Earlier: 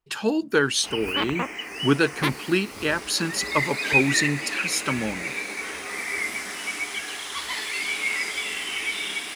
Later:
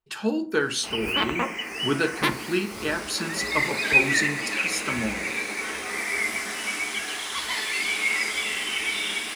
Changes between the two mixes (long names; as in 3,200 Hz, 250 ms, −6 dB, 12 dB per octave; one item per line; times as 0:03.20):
speech −6.5 dB
reverb: on, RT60 0.50 s